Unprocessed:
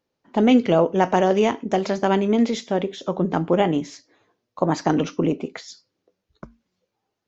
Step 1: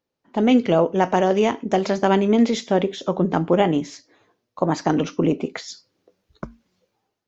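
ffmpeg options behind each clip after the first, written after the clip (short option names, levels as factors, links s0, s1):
-af "dynaudnorm=f=170:g=5:m=3.35,volume=0.668"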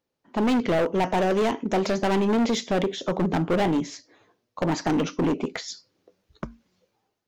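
-af "asoftclip=type=hard:threshold=0.112"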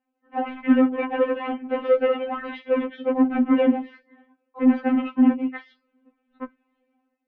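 -af "highpass=f=190:t=q:w=0.5412,highpass=f=190:t=q:w=1.307,lowpass=f=2700:t=q:w=0.5176,lowpass=f=2700:t=q:w=0.7071,lowpass=f=2700:t=q:w=1.932,afreqshift=-78,lowshelf=f=210:g=11.5,afftfilt=real='re*3.46*eq(mod(b,12),0)':imag='im*3.46*eq(mod(b,12),0)':win_size=2048:overlap=0.75,volume=1.41"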